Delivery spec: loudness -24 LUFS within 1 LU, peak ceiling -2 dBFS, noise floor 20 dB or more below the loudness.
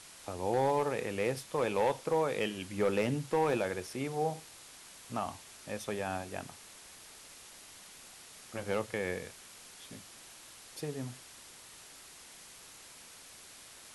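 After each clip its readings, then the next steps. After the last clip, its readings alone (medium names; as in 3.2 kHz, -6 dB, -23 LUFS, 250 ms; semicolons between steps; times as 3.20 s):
clipped samples 0.4%; clipping level -22.0 dBFS; noise floor -53 dBFS; noise floor target -55 dBFS; loudness -34.5 LUFS; peak level -22.0 dBFS; loudness target -24.0 LUFS
-> clip repair -22 dBFS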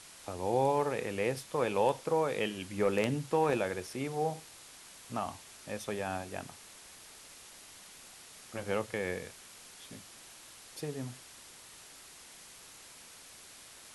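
clipped samples 0.0%; noise floor -53 dBFS; noise floor target -54 dBFS
-> noise reduction 6 dB, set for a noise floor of -53 dBFS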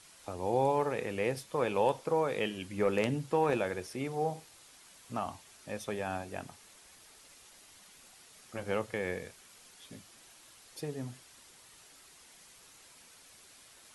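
noise floor -58 dBFS; loudness -34.0 LUFS; peak level -13.5 dBFS; loudness target -24.0 LUFS
-> trim +10 dB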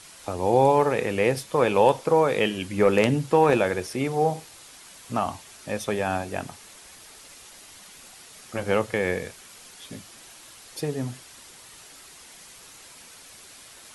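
loudness -24.0 LUFS; peak level -3.5 dBFS; noise floor -48 dBFS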